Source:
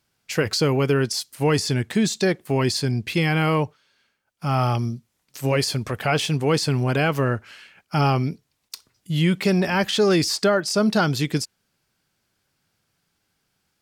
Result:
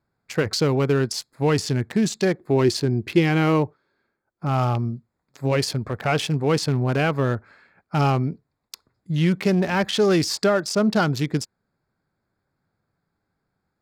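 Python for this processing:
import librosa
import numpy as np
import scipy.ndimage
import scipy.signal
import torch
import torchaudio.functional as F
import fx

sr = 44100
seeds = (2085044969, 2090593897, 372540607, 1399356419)

y = fx.wiener(x, sr, points=15)
y = fx.peak_eq(y, sr, hz=350.0, db=9.0, octaves=0.42, at=(2.4, 4.49))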